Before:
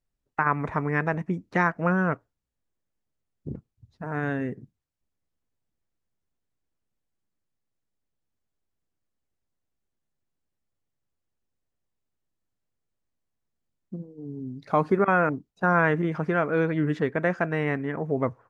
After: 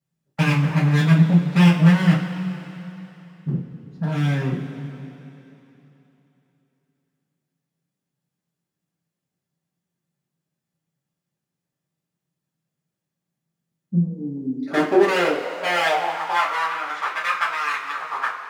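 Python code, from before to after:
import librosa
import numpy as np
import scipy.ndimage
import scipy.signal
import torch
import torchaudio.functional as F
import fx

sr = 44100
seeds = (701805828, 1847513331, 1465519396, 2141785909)

y = np.minimum(x, 2.0 * 10.0 ** (-24.0 / 20.0) - x)
y = fx.rev_double_slope(y, sr, seeds[0], early_s=0.26, late_s=3.3, knee_db=-18, drr_db=-8.5)
y = fx.filter_sweep_highpass(y, sr, from_hz=160.0, to_hz=1200.0, start_s=13.93, end_s=16.71, q=4.1)
y = F.gain(torch.from_numpy(y), -5.0).numpy()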